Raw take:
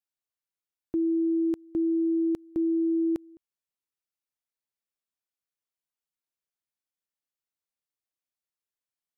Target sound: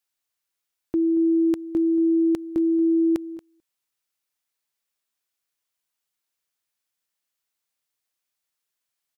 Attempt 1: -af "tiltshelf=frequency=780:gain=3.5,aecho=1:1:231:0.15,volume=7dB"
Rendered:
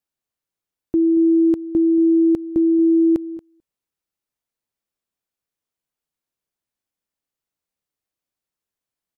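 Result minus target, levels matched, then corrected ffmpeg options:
1,000 Hz band −5.5 dB
-af "tiltshelf=frequency=780:gain=-3.5,aecho=1:1:231:0.15,volume=7dB"

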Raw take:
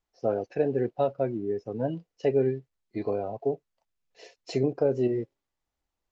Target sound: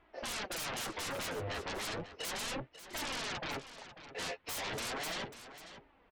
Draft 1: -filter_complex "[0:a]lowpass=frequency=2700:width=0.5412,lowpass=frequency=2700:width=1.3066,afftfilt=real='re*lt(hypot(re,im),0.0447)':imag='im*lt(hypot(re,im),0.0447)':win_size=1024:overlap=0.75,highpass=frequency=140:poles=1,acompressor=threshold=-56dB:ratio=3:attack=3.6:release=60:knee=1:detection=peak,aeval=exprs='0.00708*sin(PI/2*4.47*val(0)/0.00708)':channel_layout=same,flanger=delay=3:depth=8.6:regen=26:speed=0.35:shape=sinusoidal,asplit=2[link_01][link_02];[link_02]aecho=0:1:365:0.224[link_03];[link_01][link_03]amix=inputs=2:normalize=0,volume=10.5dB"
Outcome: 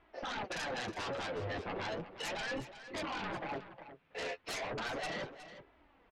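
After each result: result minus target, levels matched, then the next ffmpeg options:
downward compressor: peak gain reduction +11 dB; echo 178 ms early
-filter_complex "[0:a]lowpass=frequency=2700:width=0.5412,lowpass=frequency=2700:width=1.3066,afftfilt=real='re*lt(hypot(re,im),0.0447)':imag='im*lt(hypot(re,im),0.0447)':win_size=1024:overlap=0.75,highpass=frequency=140:poles=1,aeval=exprs='0.00708*sin(PI/2*4.47*val(0)/0.00708)':channel_layout=same,flanger=delay=3:depth=8.6:regen=26:speed=0.35:shape=sinusoidal,asplit=2[link_01][link_02];[link_02]aecho=0:1:365:0.224[link_03];[link_01][link_03]amix=inputs=2:normalize=0,volume=10.5dB"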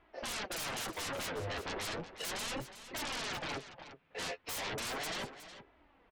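echo 178 ms early
-filter_complex "[0:a]lowpass=frequency=2700:width=0.5412,lowpass=frequency=2700:width=1.3066,afftfilt=real='re*lt(hypot(re,im),0.0447)':imag='im*lt(hypot(re,im),0.0447)':win_size=1024:overlap=0.75,highpass=frequency=140:poles=1,aeval=exprs='0.00708*sin(PI/2*4.47*val(0)/0.00708)':channel_layout=same,flanger=delay=3:depth=8.6:regen=26:speed=0.35:shape=sinusoidal,asplit=2[link_01][link_02];[link_02]aecho=0:1:543:0.224[link_03];[link_01][link_03]amix=inputs=2:normalize=0,volume=10.5dB"

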